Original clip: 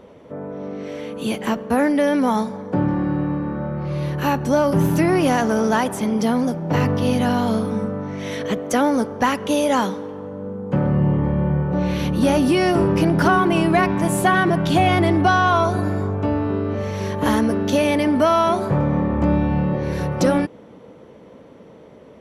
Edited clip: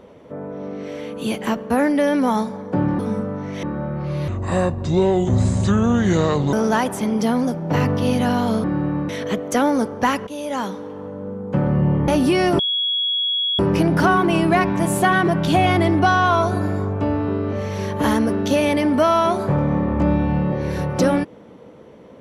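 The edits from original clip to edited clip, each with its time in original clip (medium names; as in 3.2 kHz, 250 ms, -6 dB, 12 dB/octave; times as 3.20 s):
2.99–3.44 s: swap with 7.64–8.28 s
4.09–5.53 s: speed 64%
9.46–10.22 s: fade in, from -15 dB
11.27–12.30 s: delete
12.81 s: add tone 3.34 kHz -18 dBFS 1.00 s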